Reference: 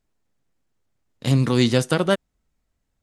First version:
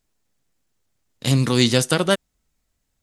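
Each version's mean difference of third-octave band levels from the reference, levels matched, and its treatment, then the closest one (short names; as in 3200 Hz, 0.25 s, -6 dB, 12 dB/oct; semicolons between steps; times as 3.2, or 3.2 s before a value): 2.5 dB: high shelf 2800 Hz +9 dB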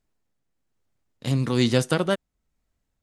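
1.0 dB: tremolo 1.1 Hz, depth 35%; gain -1.5 dB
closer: second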